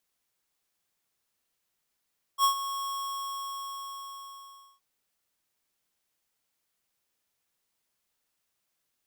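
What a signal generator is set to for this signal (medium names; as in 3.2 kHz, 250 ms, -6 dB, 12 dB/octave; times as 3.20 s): ADSR square 1.1 kHz, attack 60 ms, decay 101 ms, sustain -12.5 dB, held 0.48 s, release 1940 ms -21 dBFS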